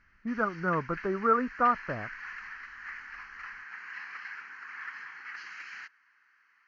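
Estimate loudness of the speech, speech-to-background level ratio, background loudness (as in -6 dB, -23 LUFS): -29.0 LUFS, 13.0 dB, -42.0 LUFS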